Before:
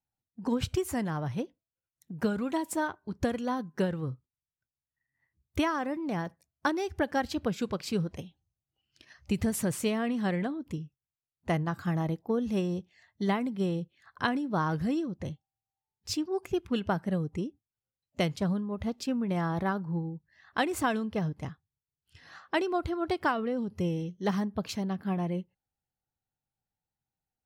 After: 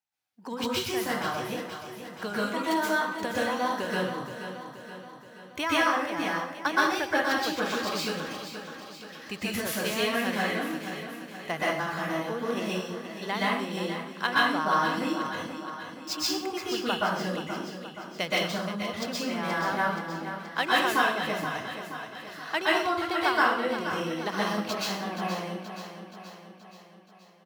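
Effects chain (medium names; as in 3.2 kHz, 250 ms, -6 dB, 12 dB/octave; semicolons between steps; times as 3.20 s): median filter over 5 samples; high-pass 1.3 kHz 6 dB/octave; feedback delay 476 ms, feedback 56%, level -10 dB; plate-style reverb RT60 0.58 s, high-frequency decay 0.95×, pre-delay 110 ms, DRR -6.5 dB; trim +4 dB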